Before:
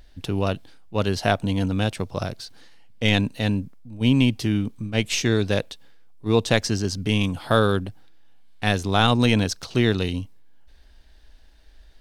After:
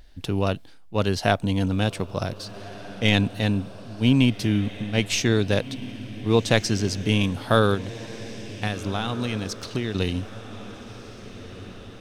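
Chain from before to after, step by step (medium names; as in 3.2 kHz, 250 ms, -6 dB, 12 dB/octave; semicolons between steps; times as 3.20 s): 7.74–9.95 s: compression 6:1, threshold -24 dBFS, peak gain reduction 11.5 dB; echo that smears into a reverb 1615 ms, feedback 54%, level -15 dB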